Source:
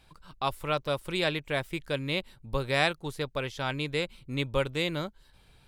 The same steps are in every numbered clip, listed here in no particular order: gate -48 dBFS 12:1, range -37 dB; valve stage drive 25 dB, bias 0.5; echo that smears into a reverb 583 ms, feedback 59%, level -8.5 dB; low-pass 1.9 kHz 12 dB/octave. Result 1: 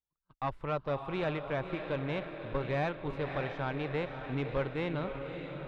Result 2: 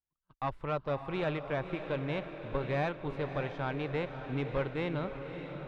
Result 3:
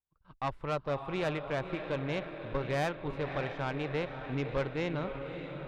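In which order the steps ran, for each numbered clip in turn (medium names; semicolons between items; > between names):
echo that smears into a reverb > valve stage > gate > low-pass; valve stage > echo that smears into a reverb > gate > low-pass; echo that smears into a reverb > gate > low-pass > valve stage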